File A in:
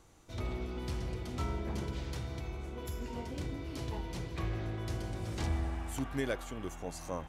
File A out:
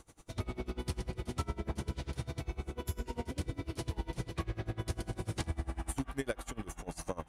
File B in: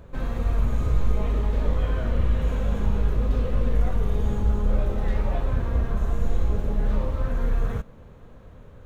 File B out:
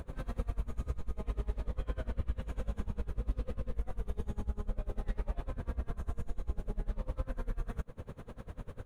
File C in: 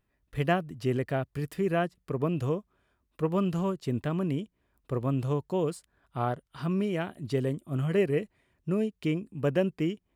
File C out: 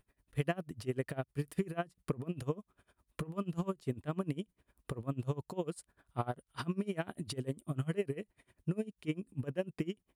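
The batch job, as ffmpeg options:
-af "equalizer=frequency=9500:width=3.4:gain=10,acompressor=threshold=-35dB:ratio=6,aeval=exprs='val(0)*pow(10,-24*(0.5-0.5*cos(2*PI*10*n/s))/20)':channel_layout=same,volume=7dB"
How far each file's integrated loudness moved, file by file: −1.0, −14.0, −8.5 LU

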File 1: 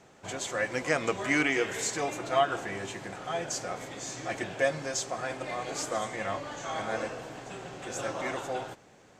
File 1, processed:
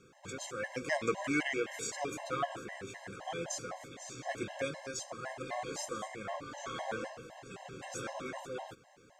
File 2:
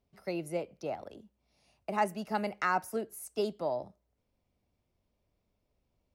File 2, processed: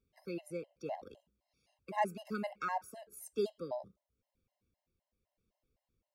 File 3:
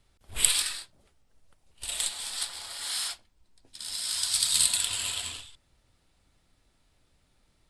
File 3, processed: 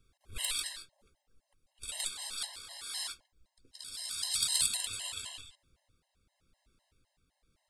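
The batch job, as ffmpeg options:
-af "acontrast=78,tremolo=f=0.89:d=0.34,afftfilt=real='re*gt(sin(2*PI*3.9*pts/sr)*(1-2*mod(floor(b*sr/1024/540),2)),0)':imag='im*gt(sin(2*PI*3.9*pts/sr)*(1-2*mod(floor(b*sr/1024/540),2)),0)':win_size=1024:overlap=0.75,volume=-8.5dB"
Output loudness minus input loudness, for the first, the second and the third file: −7.0, −5.5, −7.0 LU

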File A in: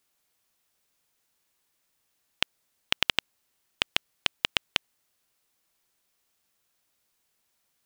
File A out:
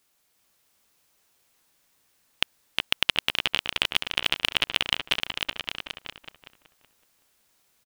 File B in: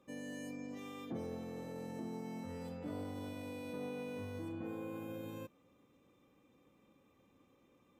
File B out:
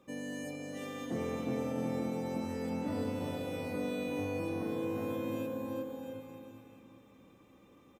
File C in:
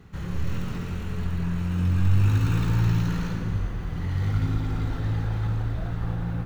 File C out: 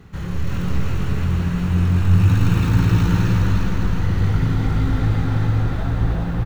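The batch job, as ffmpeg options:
-filter_complex "[0:a]asplit=2[link_01][link_02];[link_02]aecho=0:1:360|666|926.1|1147|1335:0.631|0.398|0.251|0.158|0.1[link_03];[link_01][link_03]amix=inputs=2:normalize=0,acontrast=52,asplit=2[link_04][link_05];[link_05]adelay=375,lowpass=frequency=2100:poles=1,volume=-4.5dB,asplit=2[link_06][link_07];[link_07]adelay=375,lowpass=frequency=2100:poles=1,volume=0.28,asplit=2[link_08][link_09];[link_09]adelay=375,lowpass=frequency=2100:poles=1,volume=0.28,asplit=2[link_10][link_11];[link_11]adelay=375,lowpass=frequency=2100:poles=1,volume=0.28[link_12];[link_06][link_08][link_10][link_12]amix=inputs=4:normalize=0[link_13];[link_04][link_13]amix=inputs=2:normalize=0,volume=-1dB"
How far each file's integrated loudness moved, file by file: +3.0, +7.5, +7.0 LU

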